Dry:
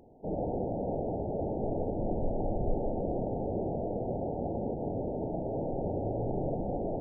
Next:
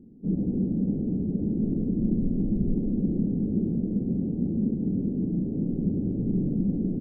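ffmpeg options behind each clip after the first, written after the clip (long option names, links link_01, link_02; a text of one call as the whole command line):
ffmpeg -i in.wav -af "firequalizer=gain_entry='entry(120,0);entry(190,14);entry(650,-26)':delay=0.05:min_phase=1,acontrast=51,volume=-3.5dB" out.wav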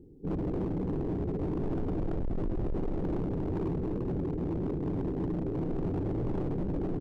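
ffmpeg -i in.wav -af "aecho=1:1:2.3:0.86,volume=28dB,asoftclip=hard,volume=-28dB" out.wav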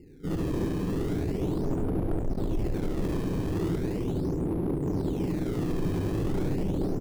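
ffmpeg -i in.wav -filter_complex "[0:a]asplit=2[link_01][link_02];[link_02]acrusher=samples=18:mix=1:aa=0.000001:lfo=1:lforange=28.8:lforate=0.38,volume=-6dB[link_03];[link_01][link_03]amix=inputs=2:normalize=0,aecho=1:1:72:0.596,volume=-1.5dB" out.wav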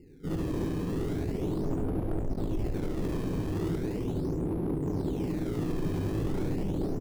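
ffmpeg -i in.wav -filter_complex "[0:a]asplit=2[link_01][link_02];[link_02]adelay=19,volume=-11dB[link_03];[link_01][link_03]amix=inputs=2:normalize=0,volume=-2.5dB" out.wav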